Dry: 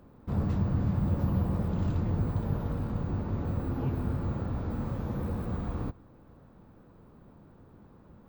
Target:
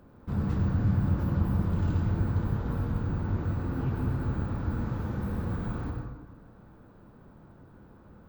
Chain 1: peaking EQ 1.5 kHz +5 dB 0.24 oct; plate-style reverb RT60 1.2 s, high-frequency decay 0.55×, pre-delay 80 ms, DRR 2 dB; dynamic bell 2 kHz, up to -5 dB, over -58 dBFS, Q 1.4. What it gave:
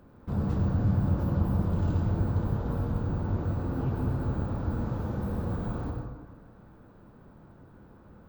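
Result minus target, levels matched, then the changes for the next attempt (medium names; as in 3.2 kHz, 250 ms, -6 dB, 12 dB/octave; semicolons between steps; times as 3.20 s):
2 kHz band -3.0 dB
change: dynamic bell 610 Hz, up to -5 dB, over -58 dBFS, Q 1.4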